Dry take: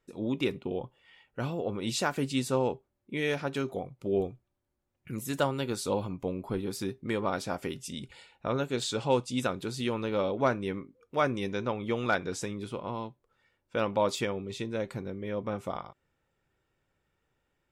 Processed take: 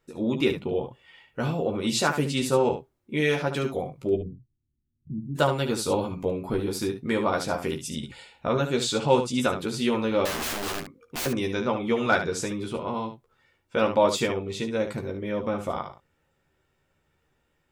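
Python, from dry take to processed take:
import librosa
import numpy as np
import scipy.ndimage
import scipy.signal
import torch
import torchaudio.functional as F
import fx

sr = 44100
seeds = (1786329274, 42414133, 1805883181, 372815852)

p1 = fx.cheby2_lowpass(x, sr, hz=870.0, order=4, stop_db=60, at=(4.14, 5.35), fade=0.02)
p2 = fx.overflow_wrap(p1, sr, gain_db=31.0, at=(10.25, 11.26))
p3 = p2 + fx.room_early_taps(p2, sr, ms=(13, 72), db=(-4.0, -8.0), dry=0)
y = p3 * 10.0 ** (4.0 / 20.0)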